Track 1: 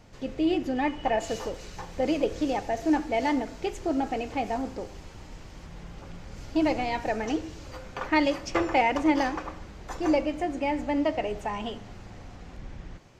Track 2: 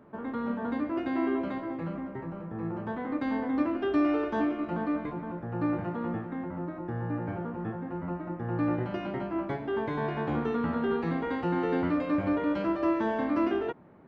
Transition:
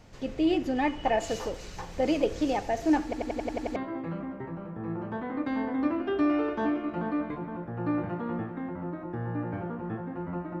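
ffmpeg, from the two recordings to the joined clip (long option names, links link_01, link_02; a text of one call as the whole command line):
ffmpeg -i cue0.wav -i cue1.wav -filter_complex "[0:a]apad=whole_dur=10.6,atrim=end=10.6,asplit=8[link_01][link_02][link_03][link_04][link_05][link_06][link_07][link_08];[link_01]atrim=end=3.132[link_09];[link_02]atrim=start=3.038:end=3.132[link_10];[link_03]atrim=start=3.038:end=3.132[link_11];[link_04]atrim=start=3.038:end=3.132[link_12];[link_05]atrim=start=3.038:end=3.132[link_13];[link_06]atrim=start=3.038:end=3.132[link_14];[link_07]atrim=start=3.038:end=3.132[link_15];[link_08]atrim=start=3.038:end=3.132[link_16];[1:a]atrim=start=1.508:end=8.35[link_17];[link_09][link_10]acrossfade=duration=0.004:curve1=hsin:curve2=hsin[link_18];[link_18][link_11]acrossfade=duration=0.004:curve1=hsin:curve2=hsin[link_19];[link_19][link_12]acrossfade=duration=0.004:curve1=hsin:curve2=hsin[link_20];[link_20][link_13]acrossfade=duration=0.004:curve1=hsin:curve2=hsin[link_21];[link_21][link_14]acrossfade=duration=0.004:curve1=hsin:curve2=hsin[link_22];[link_22][link_15]acrossfade=duration=0.004:curve1=hsin:curve2=hsin[link_23];[link_23][link_16]acrossfade=duration=0.004:curve1=hsin:curve2=hsin[link_24];[link_24][link_17]acrossfade=duration=0.004:curve1=hsin:curve2=hsin" out.wav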